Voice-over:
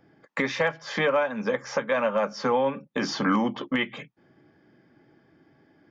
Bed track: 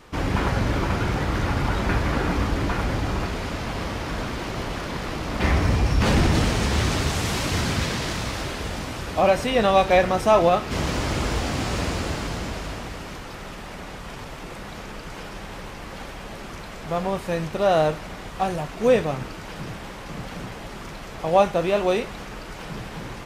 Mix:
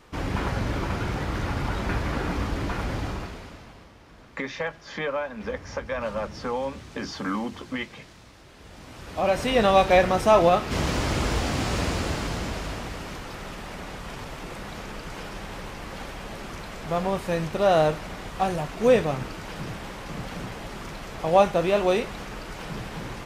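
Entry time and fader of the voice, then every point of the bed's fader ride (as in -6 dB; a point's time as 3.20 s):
4.00 s, -5.5 dB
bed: 3.05 s -4.5 dB
3.92 s -22 dB
8.43 s -22 dB
9.49 s -0.5 dB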